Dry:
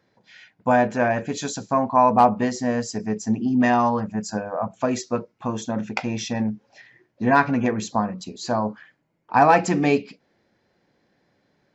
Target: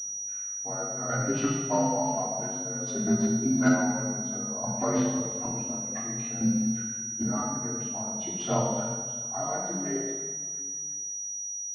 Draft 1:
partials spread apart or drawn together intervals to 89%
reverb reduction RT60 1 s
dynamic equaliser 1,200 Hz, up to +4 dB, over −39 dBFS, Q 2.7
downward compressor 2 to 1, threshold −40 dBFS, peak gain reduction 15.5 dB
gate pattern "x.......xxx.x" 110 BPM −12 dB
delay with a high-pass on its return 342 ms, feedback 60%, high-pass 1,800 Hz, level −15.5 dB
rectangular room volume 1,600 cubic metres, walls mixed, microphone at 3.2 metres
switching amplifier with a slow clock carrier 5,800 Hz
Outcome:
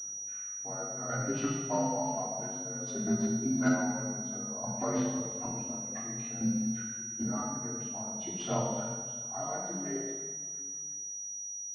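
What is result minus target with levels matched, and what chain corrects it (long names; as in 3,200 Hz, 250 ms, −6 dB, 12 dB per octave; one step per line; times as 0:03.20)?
downward compressor: peak gain reduction +5 dB
partials spread apart or drawn together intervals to 89%
reverb reduction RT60 1 s
dynamic equaliser 1,200 Hz, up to +4 dB, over −39 dBFS, Q 2.7
downward compressor 2 to 1, threshold −30 dBFS, peak gain reduction 10.5 dB
gate pattern "x.......xxx.x" 110 BPM −12 dB
delay with a high-pass on its return 342 ms, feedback 60%, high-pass 1,800 Hz, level −15.5 dB
rectangular room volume 1,600 cubic metres, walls mixed, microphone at 3.2 metres
switching amplifier with a slow clock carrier 5,800 Hz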